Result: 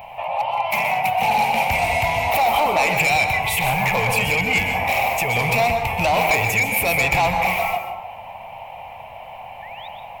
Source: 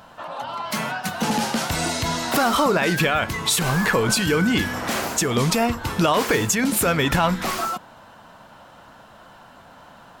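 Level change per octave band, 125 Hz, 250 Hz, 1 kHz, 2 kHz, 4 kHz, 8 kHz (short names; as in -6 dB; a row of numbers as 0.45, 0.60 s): -1.5, -8.5, +6.0, +5.5, -1.5, -5.5 dB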